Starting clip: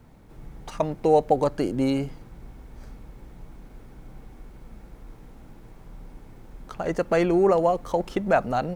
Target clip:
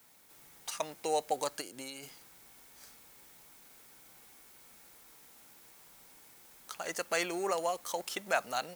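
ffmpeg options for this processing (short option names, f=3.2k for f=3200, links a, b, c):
-filter_complex "[0:a]aderivative,asplit=3[a][b][c];[a]afade=t=out:st=1.6:d=0.02[d];[b]acompressor=threshold=-50dB:ratio=6,afade=t=in:st=1.6:d=0.02,afade=t=out:st=2.02:d=0.02[e];[c]afade=t=in:st=2.02:d=0.02[f];[d][e][f]amix=inputs=3:normalize=0,volume=9dB"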